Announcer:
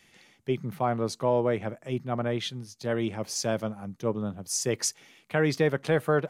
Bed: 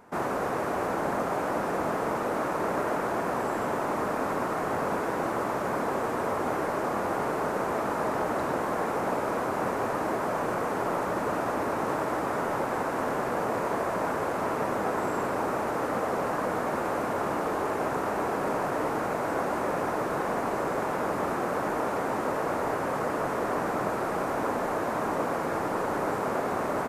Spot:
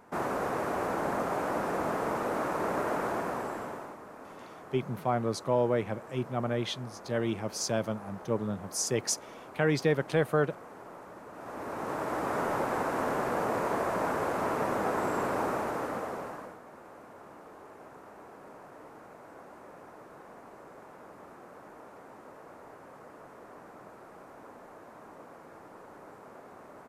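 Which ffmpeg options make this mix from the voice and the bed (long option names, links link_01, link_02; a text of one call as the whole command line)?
ffmpeg -i stem1.wav -i stem2.wav -filter_complex "[0:a]adelay=4250,volume=-2dB[link_01];[1:a]volume=14.5dB,afade=type=out:start_time=3.07:duration=0.91:silence=0.158489,afade=type=in:start_time=11.33:duration=1.07:silence=0.141254,afade=type=out:start_time=15.42:duration=1.16:silence=0.105925[link_02];[link_01][link_02]amix=inputs=2:normalize=0" out.wav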